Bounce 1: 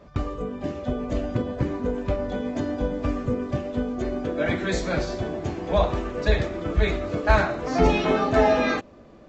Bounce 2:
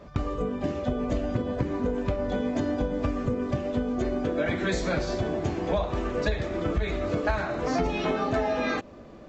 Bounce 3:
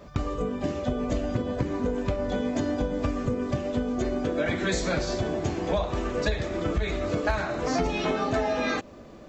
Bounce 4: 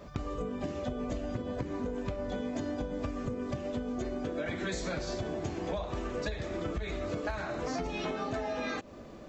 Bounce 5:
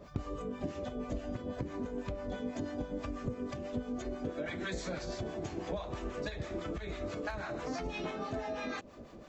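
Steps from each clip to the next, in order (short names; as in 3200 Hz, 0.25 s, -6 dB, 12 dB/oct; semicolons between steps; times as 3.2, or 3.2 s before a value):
compressor 12:1, threshold -25 dBFS, peak gain reduction 13.5 dB; gain +2.5 dB
high shelf 5700 Hz +10 dB
compressor 3:1, threshold -32 dBFS, peak gain reduction 9 dB; gain -1.5 dB
harmonic tremolo 6.1 Hz, depth 70%, crossover 730 Hz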